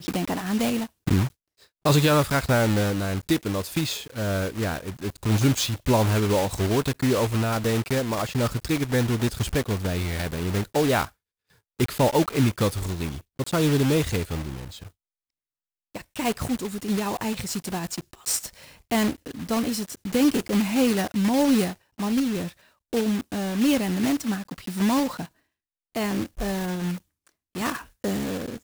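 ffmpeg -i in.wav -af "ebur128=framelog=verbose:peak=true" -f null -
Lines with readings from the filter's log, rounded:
Integrated loudness:
  I:         -25.0 LUFS
  Threshold: -35.4 LUFS
Loudness range:
  LRA:         5.5 LU
  Threshold: -45.4 LUFS
  LRA low:   -29.1 LUFS
  LRA high:  -23.5 LUFS
True peak:
  Peak:       -9.8 dBFS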